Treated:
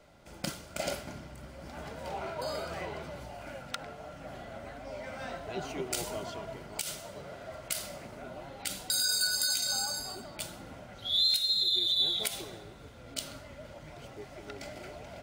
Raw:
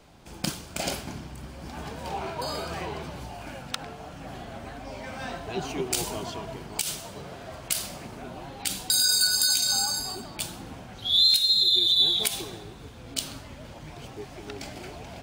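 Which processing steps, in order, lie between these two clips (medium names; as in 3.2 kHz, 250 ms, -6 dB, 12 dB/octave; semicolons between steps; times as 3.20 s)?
small resonant body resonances 590/1400/2000 Hz, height 10 dB, ringing for 30 ms; trim -7 dB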